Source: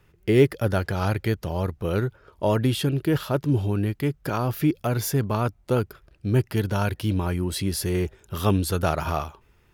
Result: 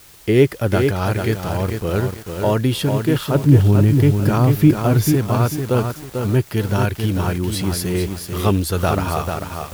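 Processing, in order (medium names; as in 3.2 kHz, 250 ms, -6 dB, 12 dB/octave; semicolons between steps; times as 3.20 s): 3.35–5.12 s: bass shelf 280 Hz +9.5 dB; in parallel at -12 dB: word length cut 6-bit, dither triangular; on the sum: bit-crushed delay 443 ms, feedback 35%, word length 6-bit, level -5 dB; trim +2 dB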